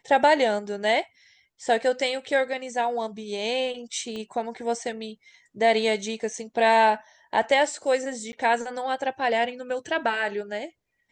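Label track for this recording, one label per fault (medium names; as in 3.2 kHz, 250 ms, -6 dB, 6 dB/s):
4.160000	4.160000	pop -24 dBFS
8.320000	8.330000	dropout 10 ms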